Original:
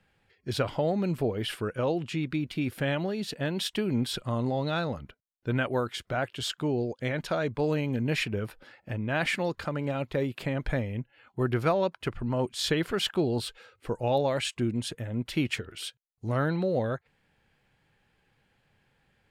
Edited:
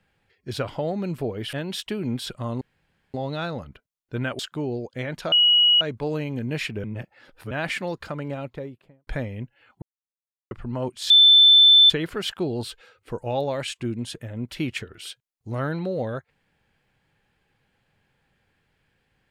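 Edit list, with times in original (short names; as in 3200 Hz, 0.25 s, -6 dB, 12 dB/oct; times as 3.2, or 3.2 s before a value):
1.53–3.4 cut
4.48 insert room tone 0.53 s
5.73–6.45 cut
7.38 add tone 2910 Hz -13.5 dBFS 0.49 s
8.41–9.08 reverse
9.76–10.64 studio fade out
11.39–12.08 mute
12.67 add tone 3530 Hz -9.5 dBFS 0.80 s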